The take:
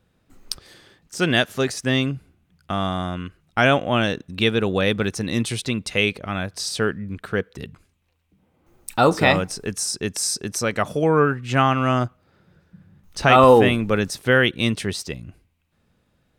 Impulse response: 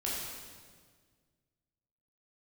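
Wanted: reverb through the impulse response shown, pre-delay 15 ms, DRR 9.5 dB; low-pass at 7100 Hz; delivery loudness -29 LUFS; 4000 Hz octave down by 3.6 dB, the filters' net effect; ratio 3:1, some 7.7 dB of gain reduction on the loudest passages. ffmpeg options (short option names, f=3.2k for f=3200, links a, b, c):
-filter_complex "[0:a]lowpass=7.1k,equalizer=f=4k:t=o:g=-4.5,acompressor=threshold=-18dB:ratio=3,asplit=2[a][b];[1:a]atrim=start_sample=2205,adelay=15[c];[b][c]afir=irnorm=-1:irlink=0,volume=-14dB[d];[a][d]amix=inputs=2:normalize=0,volume=-4.5dB"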